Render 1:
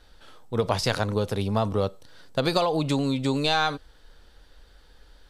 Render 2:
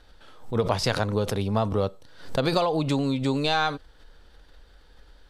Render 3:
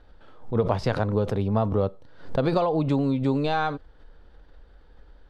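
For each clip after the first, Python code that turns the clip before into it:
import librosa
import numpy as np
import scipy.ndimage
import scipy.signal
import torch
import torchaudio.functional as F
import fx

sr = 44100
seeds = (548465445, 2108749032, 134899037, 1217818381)

y1 = fx.high_shelf(x, sr, hz=4800.0, db=-5.5)
y1 = fx.pre_swell(y1, sr, db_per_s=120.0)
y2 = fx.lowpass(y1, sr, hz=1000.0, slope=6)
y2 = y2 * librosa.db_to_amplitude(2.0)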